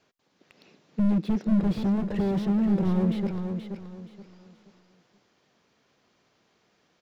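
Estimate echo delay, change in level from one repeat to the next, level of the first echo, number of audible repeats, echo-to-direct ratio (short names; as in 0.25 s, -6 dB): 0.477 s, -11.0 dB, -7.0 dB, 3, -6.5 dB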